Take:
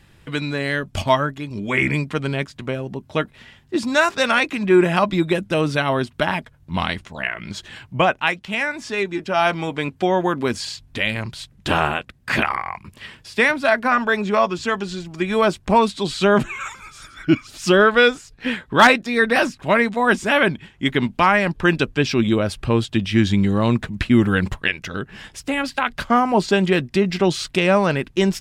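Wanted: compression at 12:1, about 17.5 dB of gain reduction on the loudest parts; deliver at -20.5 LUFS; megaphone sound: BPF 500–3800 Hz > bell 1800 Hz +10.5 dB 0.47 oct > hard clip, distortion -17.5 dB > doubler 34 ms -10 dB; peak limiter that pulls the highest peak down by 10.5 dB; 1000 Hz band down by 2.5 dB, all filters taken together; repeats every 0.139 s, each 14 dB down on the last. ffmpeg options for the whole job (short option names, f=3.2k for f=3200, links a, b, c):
-filter_complex "[0:a]equalizer=f=1k:t=o:g=-4.5,acompressor=threshold=-28dB:ratio=12,alimiter=limit=-23.5dB:level=0:latency=1,highpass=500,lowpass=3.8k,equalizer=f=1.8k:t=o:w=0.47:g=10.5,aecho=1:1:139|278:0.2|0.0399,asoftclip=type=hard:threshold=-24dB,asplit=2[a][b];[b]adelay=34,volume=-10dB[c];[a][c]amix=inputs=2:normalize=0,volume=13.5dB"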